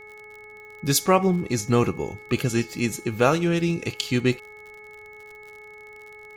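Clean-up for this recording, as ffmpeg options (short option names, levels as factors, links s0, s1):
-af "adeclick=t=4,bandreject=f=422.8:t=h:w=4,bandreject=f=845.6:t=h:w=4,bandreject=f=1268.4:t=h:w=4,bandreject=f=1691.2:t=h:w=4,bandreject=f=2200:w=30"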